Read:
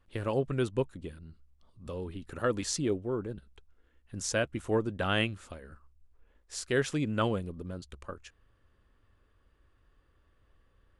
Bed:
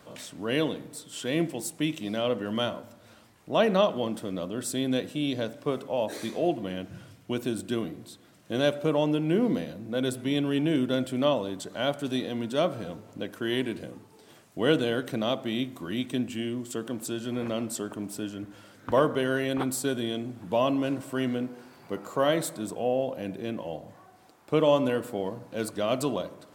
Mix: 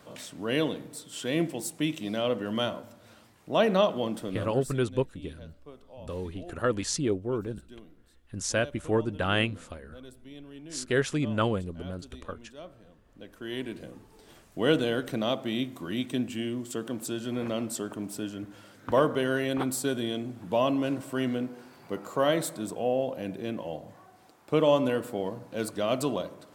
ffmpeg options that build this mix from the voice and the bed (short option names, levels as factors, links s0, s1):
-filter_complex "[0:a]adelay=4200,volume=1.33[s0];[1:a]volume=8.41,afade=t=out:st=4.26:d=0.56:silence=0.112202,afade=t=in:st=13.02:d=1.28:silence=0.112202[s1];[s0][s1]amix=inputs=2:normalize=0"